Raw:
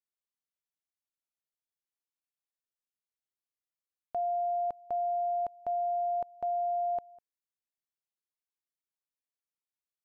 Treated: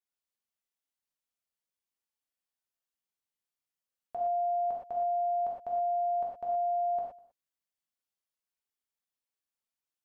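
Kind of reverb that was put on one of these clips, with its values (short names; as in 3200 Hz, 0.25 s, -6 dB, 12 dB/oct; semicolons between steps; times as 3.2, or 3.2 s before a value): non-linear reverb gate 0.14 s flat, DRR -3.5 dB; gain -4 dB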